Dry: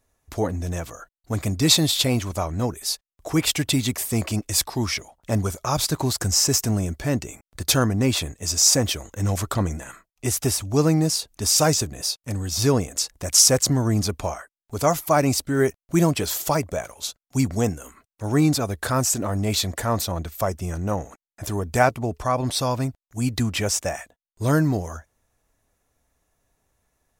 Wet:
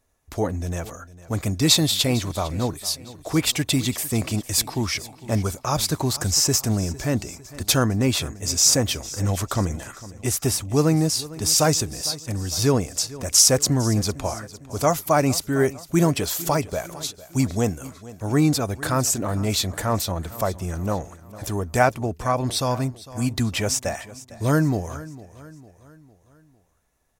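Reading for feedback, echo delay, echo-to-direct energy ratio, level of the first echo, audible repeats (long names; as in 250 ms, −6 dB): 49%, 454 ms, −17.0 dB, −18.0 dB, 3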